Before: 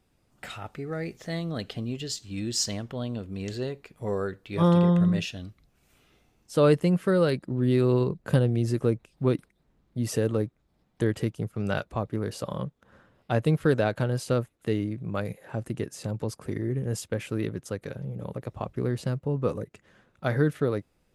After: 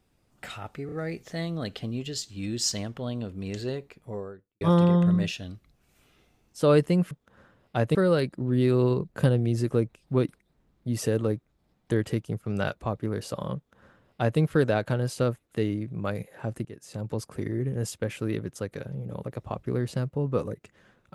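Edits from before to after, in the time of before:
0.86 stutter 0.03 s, 3 plays
3.69–4.55 studio fade out
12.66–13.5 copy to 7.05
15.75–16.25 fade in, from -17 dB

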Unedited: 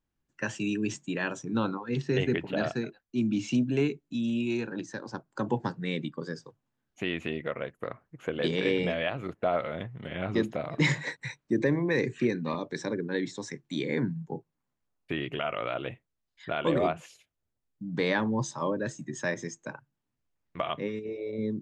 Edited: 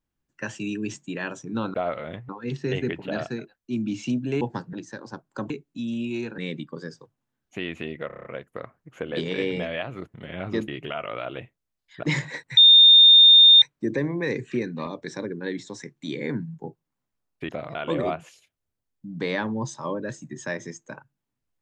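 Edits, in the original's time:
3.86–4.74 swap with 5.51–5.83
7.52 stutter 0.03 s, 7 plays
9.41–9.96 move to 1.74
10.5–10.76 swap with 15.17–16.52
11.3 add tone 3640 Hz -8.5 dBFS 1.05 s

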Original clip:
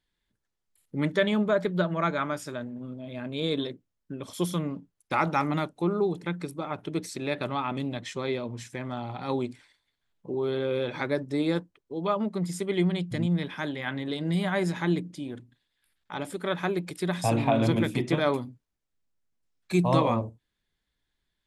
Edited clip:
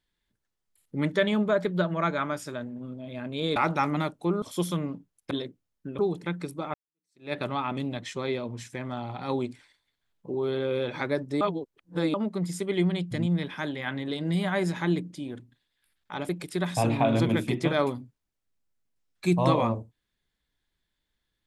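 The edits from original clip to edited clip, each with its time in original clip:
3.56–4.24 swap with 5.13–5.99
6.74–7.33 fade in exponential
11.41–12.14 reverse
16.29–16.76 cut

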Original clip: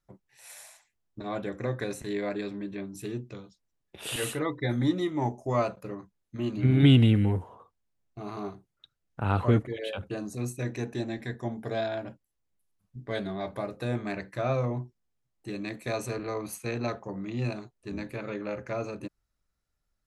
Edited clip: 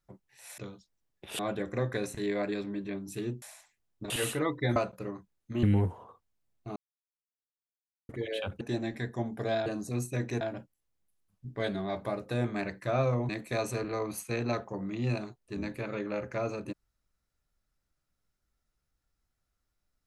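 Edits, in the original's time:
0.58–1.26 swap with 3.29–4.1
4.76–5.6 cut
6.47–7.14 cut
8.27–9.6 mute
10.12–10.87 move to 11.92
14.8–15.64 cut

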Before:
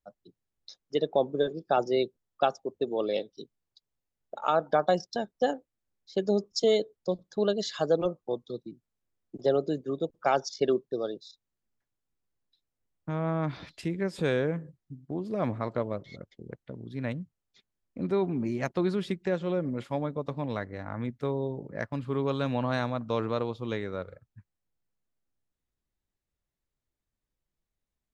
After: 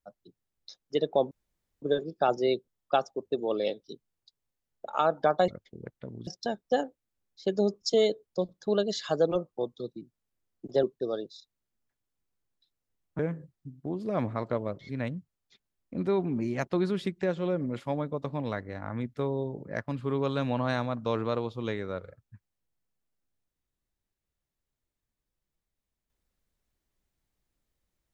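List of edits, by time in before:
1.31 insert room tone 0.51 s
9.53–10.74 cut
13.1–14.44 cut
16.14–16.93 move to 4.97

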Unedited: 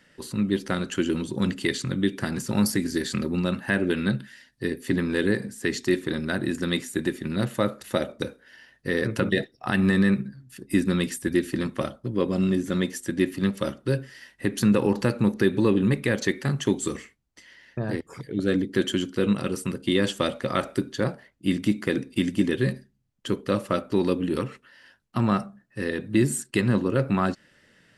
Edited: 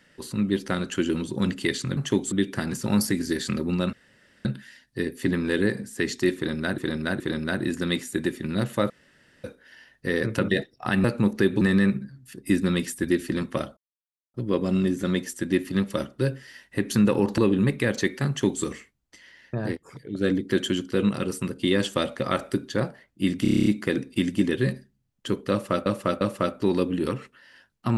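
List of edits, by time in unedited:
3.58–4.1 room tone
6.01–6.43 loop, 3 plays
7.71–8.25 room tone
12.01 insert silence 0.57 s
15.05–15.62 move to 9.85
16.52–16.87 copy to 1.97
17.99–18.45 gain -5 dB
21.66 stutter 0.03 s, 9 plays
23.51–23.86 loop, 3 plays

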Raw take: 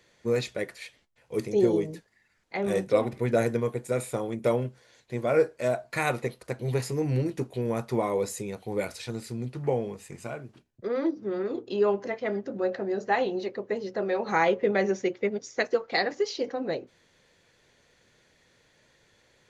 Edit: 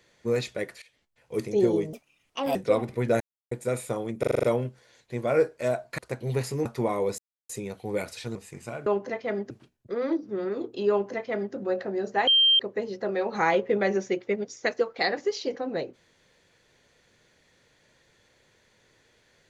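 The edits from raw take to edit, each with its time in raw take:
0.82–1.34 fade in equal-power, from -21 dB
1.93–2.79 speed 138%
3.44–3.75 mute
4.43 stutter 0.04 s, 7 plays
5.98–6.37 cut
7.04–7.79 cut
8.32 insert silence 0.31 s
9.18–9.93 cut
11.84–12.48 copy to 10.44
13.21–13.53 bleep 3150 Hz -16 dBFS

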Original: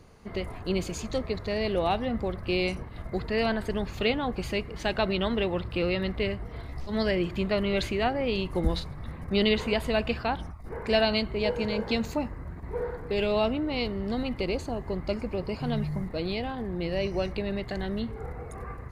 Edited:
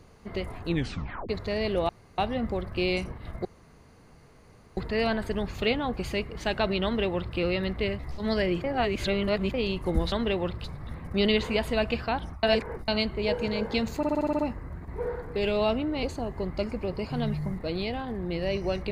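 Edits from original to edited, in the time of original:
0.65 tape stop 0.64 s
1.89 insert room tone 0.29 s
3.16 insert room tone 1.32 s
5.23–5.75 copy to 8.81
6.38–6.68 cut
7.33–8.23 reverse
10.6–11.05 reverse
12.14 stutter 0.06 s, 8 plays
13.78–14.53 cut

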